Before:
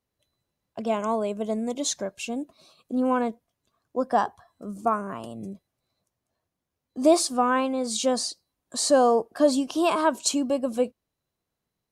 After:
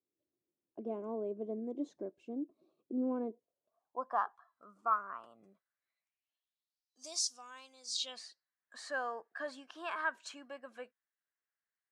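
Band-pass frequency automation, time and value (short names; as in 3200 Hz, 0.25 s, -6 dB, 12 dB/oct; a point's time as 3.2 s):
band-pass, Q 4.8
3.25 s 340 Hz
4.23 s 1300 Hz
5.52 s 1300 Hz
7 s 5800 Hz
7.89 s 5800 Hz
8.29 s 1700 Hz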